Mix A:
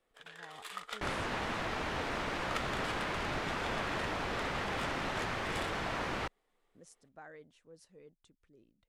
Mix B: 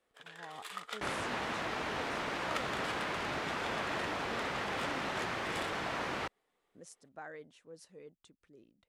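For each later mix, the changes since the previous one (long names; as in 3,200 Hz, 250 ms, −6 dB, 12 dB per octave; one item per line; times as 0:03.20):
speech +5.0 dB
master: add high-pass filter 160 Hz 6 dB per octave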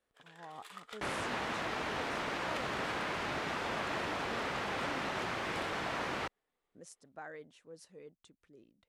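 first sound −7.0 dB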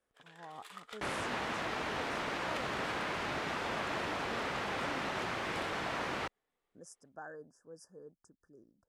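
speech: add linear-phase brick-wall band-stop 1,800–4,700 Hz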